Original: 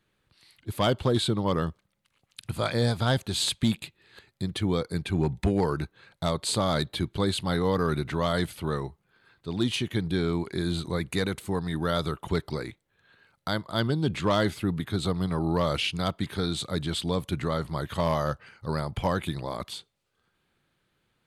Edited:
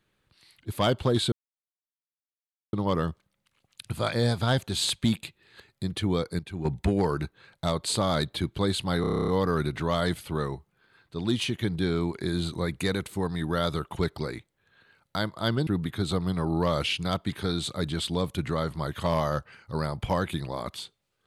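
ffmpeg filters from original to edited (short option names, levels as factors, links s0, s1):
-filter_complex "[0:a]asplit=14[s0][s1][s2][s3][s4][s5][s6][s7][s8][s9][s10][s11][s12][s13];[s0]atrim=end=1.32,asetpts=PTS-STARTPTS,afade=t=out:st=1.316:d=0.004:c=hsin,apad=pad_dur=1.41[s14];[s1]atrim=start=1.32:end=4.982,asetpts=PTS-STARTPTS,afade=t=in:d=0.004:c=hsin[s15];[s2]atrim=start=4.978:end=5.242,asetpts=PTS-STARTPTS,volume=0.376[s16];[s3]atrim=start=5.238:end=7.632[s17];[s4]atrim=start=7.598:end=7.632[s18];[s5]atrim=start=7.598:end=7.632[s19];[s6]atrim=start=7.598:end=7.632[s20];[s7]atrim=start=7.598:end=7.632[s21];[s8]atrim=start=7.598:end=7.632[s22];[s9]atrim=start=7.598:end=7.632[s23];[s10]atrim=start=7.598:end=7.632[s24];[s11]atrim=start=7.598:end=7.632[s25];[s12]atrim=start=7.598:end=13.992[s26];[s13]atrim=start=14.608[s27];[s14][s15]concat=n=2:v=0:a=1[s28];[s28][s16]acrossfade=d=0.004:c1=hsin:c2=hsin[s29];[s29][s17]acrossfade=d=0.004:c1=hsin:c2=hsin[s30];[s30][s18]acrossfade=d=0.004:c1=hsin:c2=hsin[s31];[s31][s19]acrossfade=d=0.004:c1=hsin:c2=hsin[s32];[s32][s20]acrossfade=d=0.004:c1=hsin:c2=hsin[s33];[s33][s21]acrossfade=d=0.004:c1=hsin:c2=hsin[s34];[s34][s22]acrossfade=d=0.004:c1=hsin:c2=hsin[s35];[s35][s23]acrossfade=d=0.004:c1=hsin:c2=hsin[s36];[s36][s24]acrossfade=d=0.004:c1=hsin:c2=hsin[s37];[s37][s25]acrossfade=d=0.004:c1=hsin:c2=hsin[s38];[s38][s26]acrossfade=d=0.004:c1=hsin:c2=hsin[s39];[s39][s27]acrossfade=d=0.004:c1=hsin:c2=hsin"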